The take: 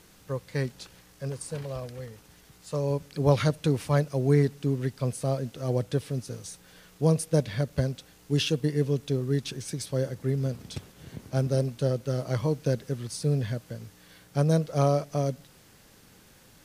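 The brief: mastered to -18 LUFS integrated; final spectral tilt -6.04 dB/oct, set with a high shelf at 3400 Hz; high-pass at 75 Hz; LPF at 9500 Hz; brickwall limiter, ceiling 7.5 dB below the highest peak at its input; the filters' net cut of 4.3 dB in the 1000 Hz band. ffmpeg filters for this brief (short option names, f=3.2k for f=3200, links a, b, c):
-af "highpass=75,lowpass=9.5k,equalizer=f=1k:t=o:g=-7,highshelf=f=3.4k:g=3.5,volume=12.5dB,alimiter=limit=-5.5dB:level=0:latency=1"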